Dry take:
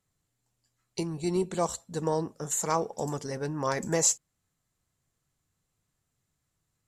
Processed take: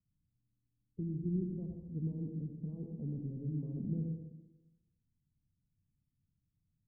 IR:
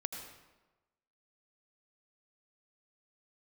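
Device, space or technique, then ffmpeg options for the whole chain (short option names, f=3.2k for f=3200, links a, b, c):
club heard from the street: -filter_complex "[0:a]alimiter=limit=-20.5dB:level=0:latency=1,lowpass=f=250:w=0.5412,lowpass=f=250:w=1.3066[a];[1:a]atrim=start_sample=2205[b];[a][b]afir=irnorm=-1:irlink=0"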